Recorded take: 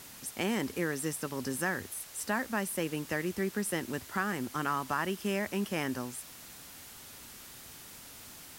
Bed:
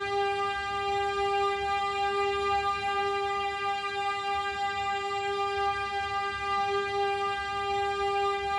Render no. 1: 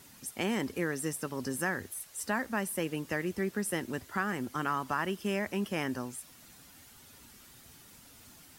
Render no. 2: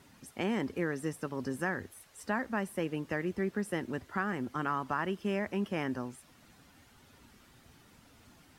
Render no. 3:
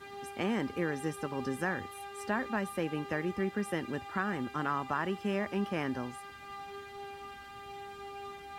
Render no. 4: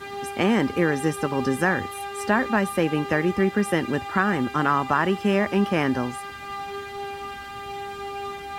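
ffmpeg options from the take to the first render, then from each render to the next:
-af "afftdn=nr=8:nf=-50"
-af "lowpass=f=2200:p=1"
-filter_complex "[1:a]volume=0.15[s0];[0:a][s0]amix=inputs=2:normalize=0"
-af "volume=3.76"

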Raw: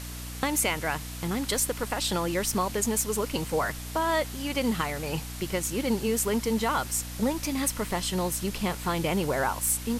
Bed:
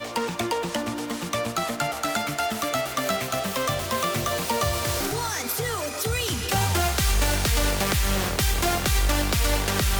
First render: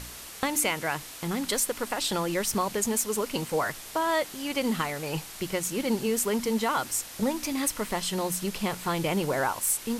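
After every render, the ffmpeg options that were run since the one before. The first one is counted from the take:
-af "bandreject=f=60:t=h:w=4,bandreject=f=120:t=h:w=4,bandreject=f=180:t=h:w=4,bandreject=f=240:t=h:w=4,bandreject=f=300:t=h:w=4"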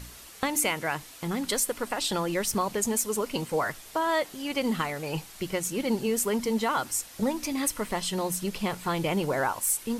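-af "afftdn=nr=6:nf=-43"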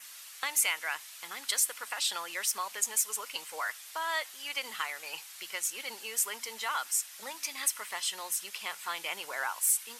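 -af "highpass=1400,adynamicequalizer=threshold=0.00224:dfrequency=4300:dqfactor=5:tfrequency=4300:tqfactor=5:attack=5:release=100:ratio=0.375:range=1.5:mode=cutabove:tftype=bell"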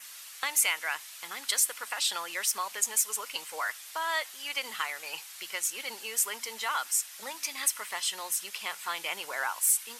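-af "volume=1.26"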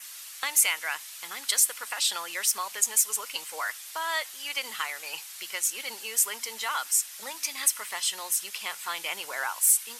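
-af "equalizer=f=12000:t=o:w=2.6:g=4"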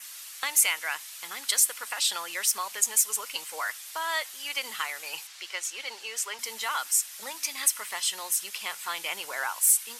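-filter_complex "[0:a]asettb=1/sr,asplit=3[s0][s1][s2];[s0]atrim=end=5.274[s3];[s1]atrim=start=5.27:end=6.39,asetpts=PTS-STARTPTS,afade=t=in:d=0.004:c=qsin,afade=t=out:st=1.116:d=0.004:c=qsin,acrossover=split=300 6900:gain=0.141 1 0.178[s4][s5][s6];[s4][s5][s6]amix=inputs=3:normalize=0[s7];[s2]atrim=start=6.386[s8];[s3][s7]acrossfade=d=0.004:c1=hsin:c2=qsin[s9];[s9][s8]acrossfade=d=0.004:c1=qsin:c2=hsin"

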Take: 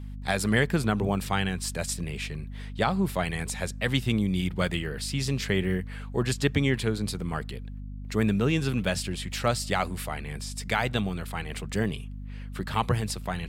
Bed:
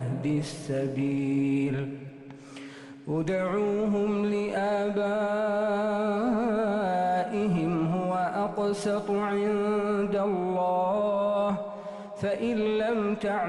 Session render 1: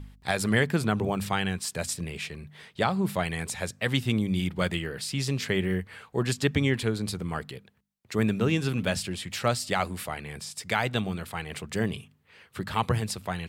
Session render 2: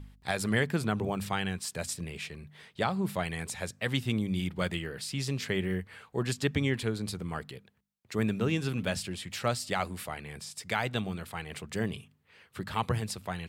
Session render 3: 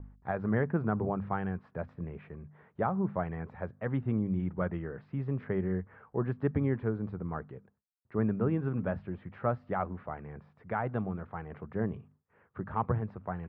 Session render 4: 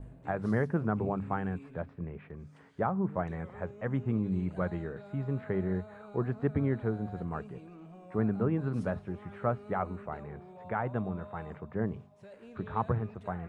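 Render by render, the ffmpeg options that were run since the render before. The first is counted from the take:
-af "bandreject=f=50:t=h:w=4,bandreject=f=100:t=h:w=4,bandreject=f=150:t=h:w=4,bandreject=f=200:t=h:w=4,bandreject=f=250:t=h:w=4"
-af "volume=0.631"
-af "agate=range=0.0224:threshold=0.00141:ratio=3:detection=peak,lowpass=f=1400:w=0.5412,lowpass=f=1400:w=1.3066"
-filter_complex "[1:a]volume=0.0708[s0];[0:a][s0]amix=inputs=2:normalize=0"

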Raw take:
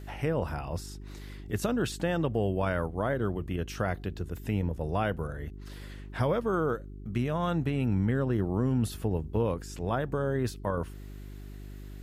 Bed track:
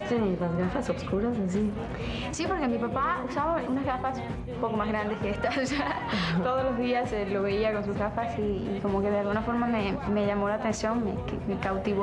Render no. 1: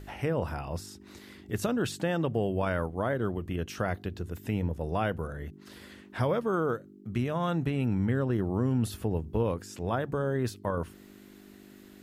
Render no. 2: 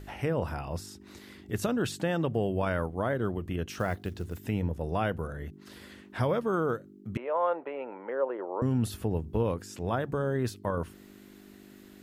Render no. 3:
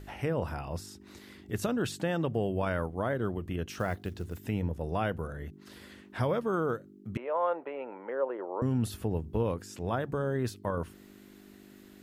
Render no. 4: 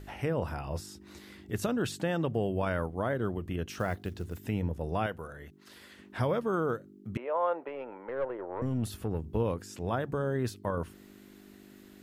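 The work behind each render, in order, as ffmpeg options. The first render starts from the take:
-af "bandreject=f=50:t=h:w=4,bandreject=f=100:t=h:w=4,bandreject=f=150:t=h:w=4"
-filter_complex "[0:a]asettb=1/sr,asplit=3[s0][s1][s2];[s0]atrim=end=3.734[s3];[s1]atrim=start=3.73:end=4.49,asetpts=PTS-STARTPTS,afade=t=in:d=0.004:c=qsin,afade=t=out:st=0.756:d=0.004:c=qsin,acrusher=bits=7:mode=log:mix=0:aa=0.000001[s4];[s2]atrim=start=4.486[s5];[s3][s4]acrossfade=d=0.004:c1=hsin:c2=qsin[s6];[s6][s5]acrossfade=d=0.004:c1=qsin:c2=hsin,asettb=1/sr,asplit=3[s7][s8][s9];[s7]atrim=end=7.174[s10];[s8]atrim=start=7.17:end=8.62,asetpts=PTS-STARTPTS,afade=t=in:d=0.004:c=qsin,afade=t=out:st=1.446:d=0.004:c=qsin,highpass=f=420:w=0.5412,highpass=f=420:w=1.3066,equalizer=f=540:t=q:w=4:g=9,equalizer=f=940:t=q:w=4:g=8,equalizer=f=1700:t=q:w=4:g=-5,lowpass=f=2200:w=0.5412,lowpass=f=2200:w=1.3066[s11];[s9]atrim=start=8.616[s12];[s10][s11]acrossfade=d=0.004:c1=hsin:c2=qsin[s13];[s13][s12]acrossfade=d=0.004:c1=qsin:c2=hsin"
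-af "volume=0.841"
-filter_complex "[0:a]asettb=1/sr,asplit=3[s0][s1][s2];[s0]atrim=end=0.634[s3];[s1]atrim=start=0.63:end=1.46,asetpts=PTS-STARTPTS,afade=t=in:d=0.004:c=qsin,afade=t=out:st=0.826:d=0.004:c=qsin,asplit=2[s4][s5];[s5]adelay=14,volume=0.398[s6];[s4][s6]amix=inputs=2:normalize=0,atrim=end_sample=36603[s7];[s2]atrim=start=1.456[s8];[s3][s7]acrossfade=d=0.004:c1=hsin:c2=qsin[s9];[s9][s8]acrossfade=d=0.004:c1=qsin:c2=hsin,asettb=1/sr,asplit=3[s10][s11][s12];[s10]atrim=end=5.064[s13];[s11]atrim=start=5.06:end=5.99,asetpts=PTS-STARTPTS,afade=t=in:d=0.004:c=qsin,afade=t=out:st=0.926:d=0.004:c=qsin,lowshelf=f=410:g=-9.5[s14];[s12]atrim=start=5.986[s15];[s13][s14]acrossfade=d=0.004:c1=hsin:c2=qsin[s16];[s16][s15]acrossfade=d=0.004:c1=qsin:c2=hsin,asettb=1/sr,asplit=3[s17][s18][s19];[s17]atrim=end=7.684[s20];[s18]atrim=start=7.68:end=9.24,asetpts=PTS-STARTPTS,afade=t=in:d=0.004:c=qsin,afade=t=out:st=1.556:d=0.004:c=qsin,aeval=exprs='(tanh(15.8*val(0)+0.35)-tanh(0.35))/15.8':c=same[s21];[s19]atrim=start=9.236[s22];[s20][s21]acrossfade=d=0.004:c1=hsin:c2=qsin[s23];[s23][s22]acrossfade=d=0.004:c1=qsin:c2=hsin"

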